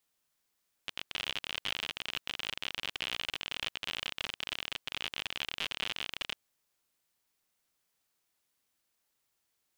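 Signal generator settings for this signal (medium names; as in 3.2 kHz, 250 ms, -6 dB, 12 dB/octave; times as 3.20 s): random clicks 53 per s -18.5 dBFS 5.48 s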